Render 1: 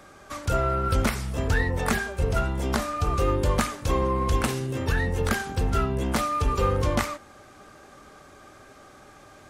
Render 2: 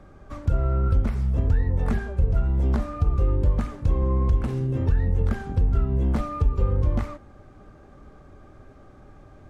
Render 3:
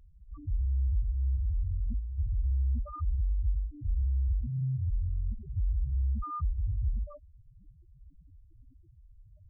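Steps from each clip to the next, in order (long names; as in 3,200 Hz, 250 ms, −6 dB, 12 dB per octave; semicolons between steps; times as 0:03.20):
spectral tilt −4 dB per octave; downward compressor 3 to 1, threshold −13 dBFS, peak gain reduction 9.5 dB; level −5.5 dB
harmonic generator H 4 −15 dB, 5 −11 dB, 6 −9 dB, 8 −18 dB, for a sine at −10.5 dBFS; spectral peaks only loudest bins 2; level −9 dB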